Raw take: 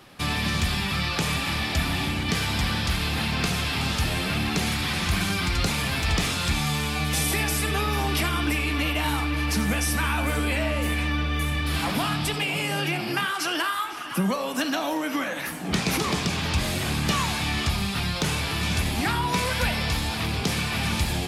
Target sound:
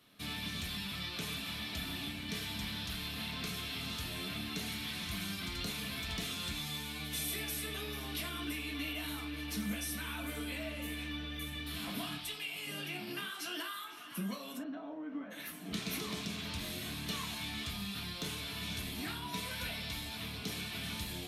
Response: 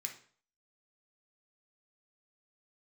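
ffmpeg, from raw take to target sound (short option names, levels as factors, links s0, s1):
-filter_complex "[0:a]asettb=1/sr,asplit=3[s0][s1][s2];[s0]atrim=end=12.184[s3];[s1]atrim=start=12.18:end=12.67,asetpts=PTS-STARTPTS,afade=t=in:d=0.004:c=qsin,afade=t=out:st=0.486:d=0.004:c=qsin,equalizer=f=220:w=0.42:g=-11[s4];[s2]atrim=start=12.666[s5];[s3][s4]acrossfade=d=0.004:c1=hsin:c2=qsin[s6];[s6][s5]acrossfade=d=0.004:c1=qsin:c2=hsin,asplit=3[s7][s8][s9];[s7]afade=t=out:st=14.57:d=0.02[s10];[s8]lowpass=1000,afade=t=in:st=14.57:d=0.02,afade=t=out:st=15.3:d=0.02[s11];[s9]afade=t=in:st=15.3:d=0.02[s12];[s10][s11][s12]amix=inputs=3:normalize=0[s13];[1:a]atrim=start_sample=2205,atrim=end_sample=4410,asetrate=74970,aresample=44100[s14];[s13][s14]afir=irnorm=-1:irlink=0,volume=0.501"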